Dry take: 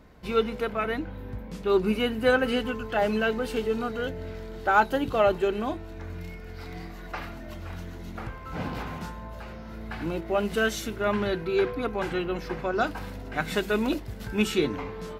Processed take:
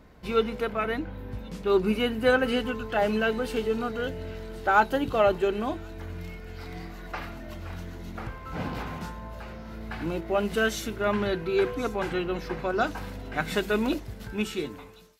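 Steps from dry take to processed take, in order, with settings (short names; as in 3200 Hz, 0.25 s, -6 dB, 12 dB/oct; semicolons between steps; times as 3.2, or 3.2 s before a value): ending faded out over 1.32 s; thin delay 1.078 s, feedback 45%, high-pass 4000 Hz, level -13.5 dB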